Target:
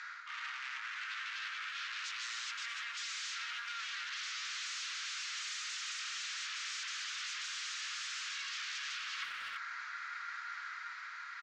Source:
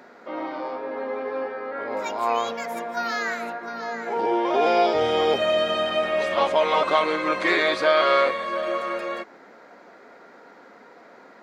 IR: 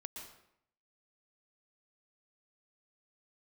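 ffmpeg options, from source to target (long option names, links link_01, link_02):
-filter_complex "[0:a]alimiter=limit=-14.5dB:level=0:latency=1:release=75,dynaudnorm=framelen=130:gausssize=13:maxgain=4dB,aeval=exprs='0.0376*(abs(mod(val(0)/0.0376+3,4)-2)-1)':channel_layout=same,asuperpass=centerf=3100:order=12:qfactor=0.52,asplit=2[link_01][link_02];[link_02]adelay=340,highpass=300,lowpass=3400,asoftclip=type=hard:threshold=-33dB,volume=-11dB[link_03];[link_01][link_03]amix=inputs=2:normalize=0,areverse,acompressor=threshold=-48dB:ratio=8,areverse,volume=8.5dB"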